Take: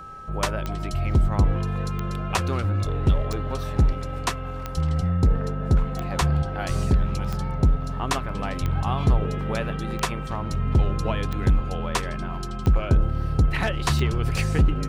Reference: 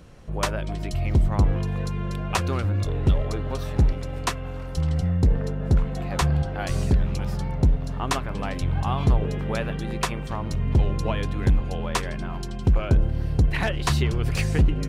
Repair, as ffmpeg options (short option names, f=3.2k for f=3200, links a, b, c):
-af "adeclick=t=4,bandreject=f=402.5:t=h:w=4,bandreject=f=805:t=h:w=4,bandreject=f=1.2075k:t=h:w=4,bandreject=f=1.61k:t=h:w=4,bandreject=f=1.3k:w=30"